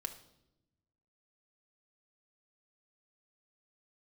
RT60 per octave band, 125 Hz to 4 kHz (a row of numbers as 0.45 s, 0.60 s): 1.6 s, 1.4 s, 1.0 s, 0.70 s, 0.65 s, 0.70 s